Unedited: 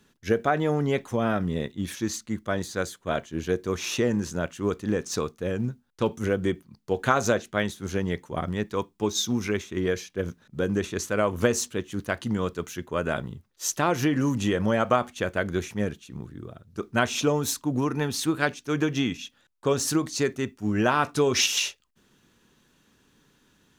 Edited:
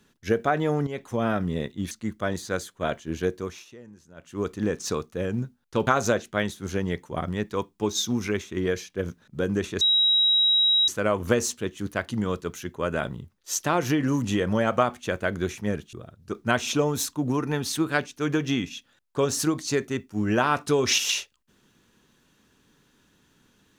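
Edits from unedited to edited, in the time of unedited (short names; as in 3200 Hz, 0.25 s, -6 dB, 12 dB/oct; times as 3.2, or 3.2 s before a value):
0.87–1.21 fade in, from -12.5 dB
1.91–2.17 cut
3.55–4.77 dip -22 dB, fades 0.36 s
6.13–7.07 cut
11.01 add tone 3840 Hz -17 dBFS 1.07 s
16.06–16.41 cut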